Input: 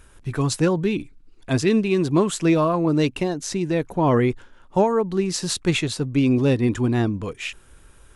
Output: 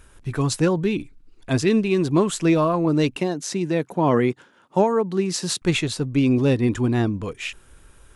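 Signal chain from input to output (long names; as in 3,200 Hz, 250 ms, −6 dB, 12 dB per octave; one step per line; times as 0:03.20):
0:03.16–0:05.62: high-pass filter 130 Hz 24 dB per octave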